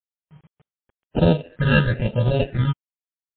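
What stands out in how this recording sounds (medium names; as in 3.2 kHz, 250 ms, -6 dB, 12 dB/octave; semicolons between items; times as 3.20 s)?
aliases and images of a low sample rate 1.1 kHz, jitter 0%; phasing stages 8, 1 Hz, lowest notch 640–2000 Hz; a quantiser's noise floor 10-bit, dither none; MP3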